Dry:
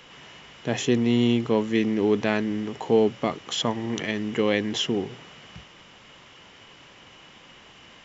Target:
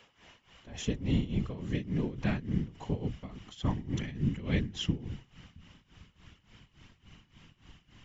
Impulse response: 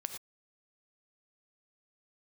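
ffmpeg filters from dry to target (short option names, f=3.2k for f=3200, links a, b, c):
-af "afftfilt=real='hypot(re,im)*cos(2*PI*random(0))':imag='hypot(re,im)*sin(2*PI*random(1))':win_size=512:overlap=0.75,tremolo=f=3.5:d=0.86,asubboost=boost=9.5:cutoff=170,volume=-3dB"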